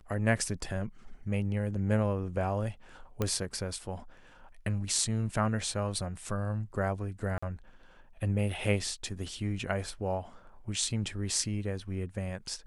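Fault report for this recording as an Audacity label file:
3.220000	3.220000	click −16 dBFS
7.380000	7.420000	drop-out 45 ms

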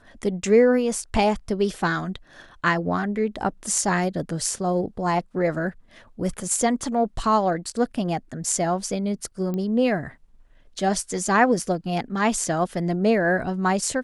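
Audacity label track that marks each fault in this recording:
9.540000	9.540000	click −18 dBFS

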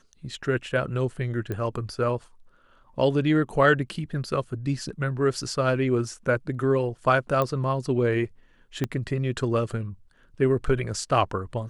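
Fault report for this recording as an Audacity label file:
1.520000	1.520000	click −19 dBFS
7.420000	7.420000	click −13 dBFS
8.840000	8.840000	click −13 dBFS

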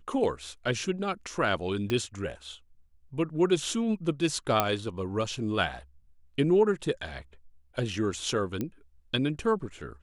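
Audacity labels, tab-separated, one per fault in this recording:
1.900000	1.900000	click −17 dBFS
4.600000	4.600000	click −8 dBFS
8.610000	8.610000	click −18 dBFS

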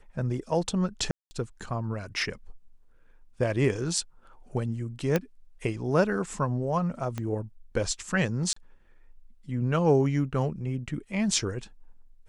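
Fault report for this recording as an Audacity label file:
1.110000	1.310000	drop-out 200 ms
5.160000	5.160000	click −11 dBFS
7.180000	7.180000	click −19 dBFS
8.530000	8.560000	drop-out 34 ms

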